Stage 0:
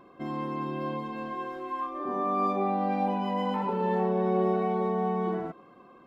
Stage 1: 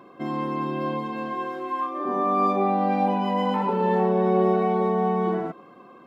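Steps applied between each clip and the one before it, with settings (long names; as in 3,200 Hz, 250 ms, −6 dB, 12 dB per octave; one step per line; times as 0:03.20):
high-pass filter 120 Hz
level +5.5 dB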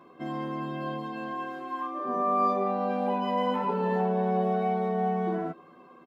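double-tracking delay 12 ms −2 dB
level −6.5 dB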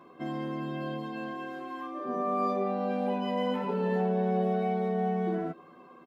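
dynamic equaliser 1,000 Hz, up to −8 dB, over −43 dBFS, Q 1.7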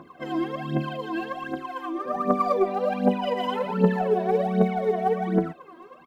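phase shifter 1.3 Hz, delay 3.2 ms, feedback 78%
level +2 dB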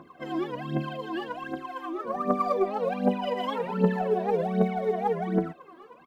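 wow of a warped record 78 rpm, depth 160 cents
level −3 dB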